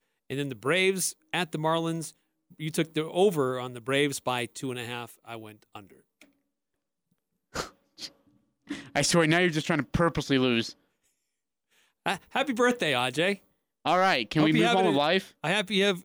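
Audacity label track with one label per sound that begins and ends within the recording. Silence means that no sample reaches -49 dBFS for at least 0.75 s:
7.540000	10.730000	sound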